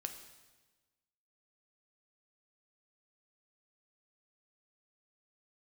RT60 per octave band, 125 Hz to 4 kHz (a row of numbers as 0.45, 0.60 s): 1.5, 1.4, 1.3, 1.2, 1.2, 1.2 s